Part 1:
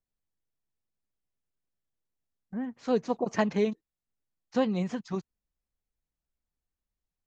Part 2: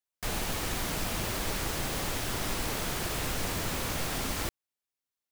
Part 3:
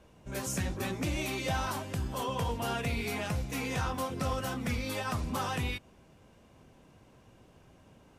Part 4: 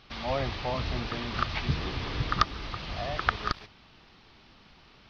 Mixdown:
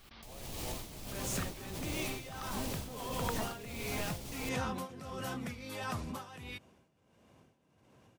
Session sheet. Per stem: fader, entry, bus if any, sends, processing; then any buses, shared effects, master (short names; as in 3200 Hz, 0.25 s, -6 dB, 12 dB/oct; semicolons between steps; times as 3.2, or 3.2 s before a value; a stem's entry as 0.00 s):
-7.0 dB, 0.00 s, no send, compressor 2:1, threshold -36 dBFS, peak gain reduction 9 dB
-7.0 dB, 0.00 s, no send, bell 1500 Hz -12 dB 1 oct
-3.5 dB, 0.80 s, no send, HPF 86 Hz
-16.0 dB, 0.00 s, no send, gate -46 dBFS, range -20 dB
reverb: off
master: tremolo 1.5 Hz, depth 93%; backwards sustainer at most 33 dB/s